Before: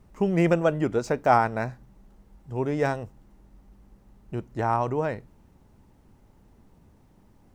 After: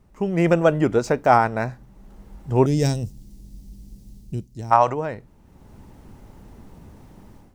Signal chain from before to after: 2.66–4.71 EQ curve 190 Hz 0 dB, 1300 Hz -24 dB, 4800 Hz +5 dB; 4.72–4.94 spectral gain 490–8100 Hz +11 dB; AGC gain up to 13 dB; gain -1 dB

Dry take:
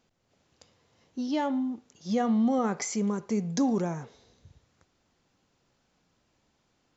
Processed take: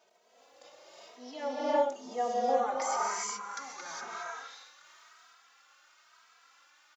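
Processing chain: compressor 1.5:1, threshold -60 dBFS, peak gain reduction 13.5 dB; transient shaper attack -7 dB, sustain +9 dB; non-linear reverb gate 0.44 s rising, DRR -5.5 dB; high-pass sweep 580 Hz -> 1300 Hz, 2.47–3.58; endless flanger 2.8 ms +1 Hz; gain +6.5 dB

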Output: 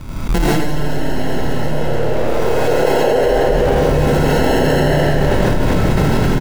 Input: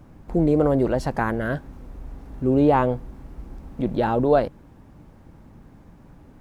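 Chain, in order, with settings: recorder AGC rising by 25 dB/s; soft clip -20.5 dBFS, distortion -10 dB; tilt -2 dB/oct; gate with hold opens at -22 dBFS; doubler 28 ms -7 dB; frequency-shifting echo 0.256 s, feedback 51%, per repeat +110 Hz, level -3 dB; sample-and-hold 37×; hard clip -20 dBFS, distortion -6 dB; 1.61–3.13 resonant high-pass 480 Hz, resonance Q 5.3; reverb RT60 5.6 s, pre-delay 60 ms, DRR -10 dB; fast leveller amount 100%; gain -10 dB

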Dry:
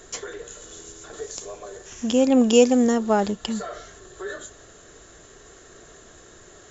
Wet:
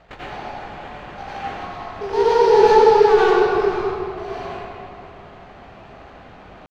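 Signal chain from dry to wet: minimum comb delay 0.3 ms; dynamic EQ 2400 Hz, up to -6 dB, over -43 dBFS, Q 1.2; in parallel at -1 dB: limiter -16.5 dBFS, peak gain reduction 11.5 dB; on the sum: pitch shift +10 st; sample-rate reducer 5300 Hz, jitter 20%; air absorption 200 m; reverb RT60 2.6 s, pre-delay 79 ms, DRR -10 dB; gain -8 dB

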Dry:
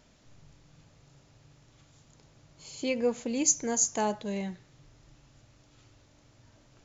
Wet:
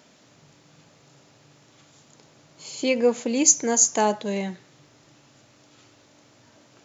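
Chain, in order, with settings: HPF 200 Hz 12 dB/oct; gain +8 dB

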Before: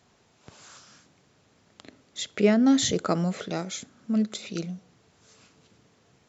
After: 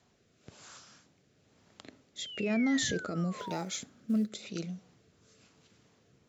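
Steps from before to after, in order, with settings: limiter -20 dBFS, peak gain reduction 11 dB; 2.18–3.64 painted sound fall 810–3400 Hz -37 dBFS; 3.38–4.3 short-mantissa float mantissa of 4-bit; rotary speaker horn 1 Hz; gain -2 dB

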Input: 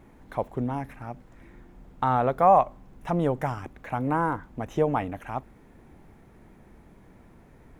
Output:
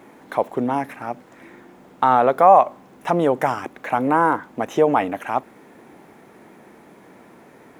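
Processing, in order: in parallel at +2.5 dB: limiter -19.5 dBFS, peak gain reduction 11.5 dB; on the sum: HPF 280 Hz 12 dB/oct; gain +3.5 dB

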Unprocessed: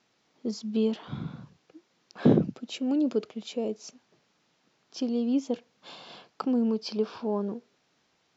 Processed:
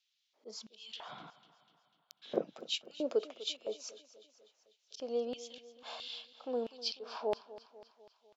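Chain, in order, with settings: spectral noise reduction 11 dB; auto swell 0.179 s; in parallel at -1.5 dB: compressor, threshold -39 dBFS, peak gain reduction 20 dB; on the sum: LFO high-pass square 1.5 Hz 550–3300 Hz; 1.3–2.22 power-law curve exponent 3; on a send: feedback echo 0.248 s, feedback 56%, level -17 dB; on the sum: gain -6 dB

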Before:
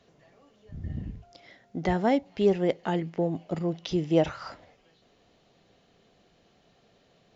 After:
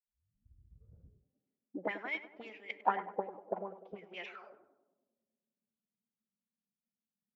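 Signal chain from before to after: tape start at the beginning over 1.29 s; auto-wah 200–2300 Hz, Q 6.2, up, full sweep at -21.5 dBFS; tape echo 0.1 s, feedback 90%, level -8.5 dB, low-pass 1200 Hz; formant-preserving pitch shift +2 st; three-band expander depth 100%; gain +1.5 dB

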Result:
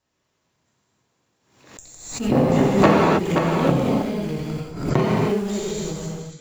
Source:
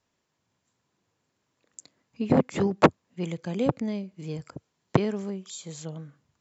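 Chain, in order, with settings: reverse delay 0.311 s, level -6 dB; in parallel at -11.5 dB: Schmitt trigger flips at -33 dBFS; on the sum: non-linear reverb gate 0.34 s flat, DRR -6 dB; backwards sustainer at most 79 dB/s; gain -1 dB

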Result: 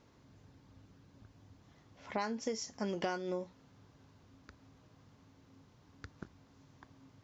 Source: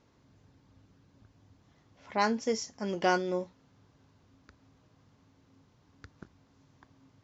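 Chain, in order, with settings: compressor 12:1, threshold -34 dBFS, peak gain reduction 13 dB; gain +1.5 dB

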